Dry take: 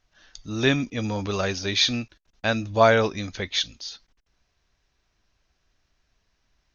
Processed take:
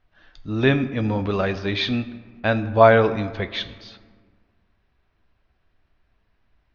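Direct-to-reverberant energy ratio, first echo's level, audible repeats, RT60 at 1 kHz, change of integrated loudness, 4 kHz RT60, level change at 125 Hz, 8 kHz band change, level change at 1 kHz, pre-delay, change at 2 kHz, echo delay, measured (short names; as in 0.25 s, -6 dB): 11.5 dB, none, none, 1.8 s, +2.5 dB, 0.90 s, +5.0 dB, n/a, +4.0 dB, 3 ms, +1.5 dB, none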